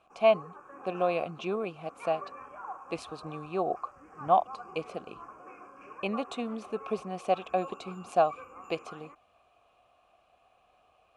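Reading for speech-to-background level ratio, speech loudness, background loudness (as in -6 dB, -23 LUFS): 15.0 dB, -32.0 LUFS, -47.0 LUFS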